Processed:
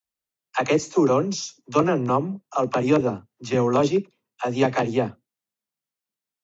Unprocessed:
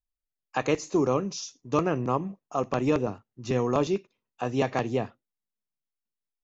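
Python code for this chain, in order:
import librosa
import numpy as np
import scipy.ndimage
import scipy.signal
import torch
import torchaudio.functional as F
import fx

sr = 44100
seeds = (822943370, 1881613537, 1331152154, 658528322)

y = scipy.signal.sosfilt(scipy.signal.butter(2, 110.0, 'highpass', fs=sr, output='sos'), x)
y = fx.dispersion(y, sr, late='lows', ms=47.0, hz=430.0)
y = F.gain(torch.from_numpy(y), 5.5).numpy()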